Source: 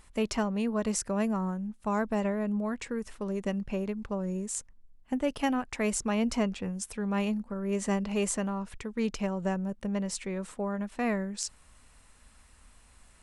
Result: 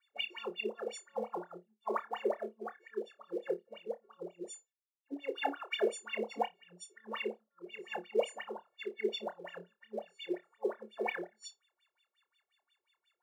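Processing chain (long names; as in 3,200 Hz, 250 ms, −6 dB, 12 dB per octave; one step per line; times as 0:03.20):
every partial snapped to a pitch grid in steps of 4 semitones
high-pass filter 120 Hz 6 dB per octave
0:07.48–0:08.30: downward expander −30 dBFS
low-shelf EQ 170 Hz +6.5 dB
LFO wah 5.6 Hz 360–3,600 Hz, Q 20
floating-point word with a short mantissa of 2 bits
flutter between parallel walls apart 4.8 metres, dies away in 0.21 s
every bin expanded away from the loudest bin 1.5 to 1
level +12.5 dB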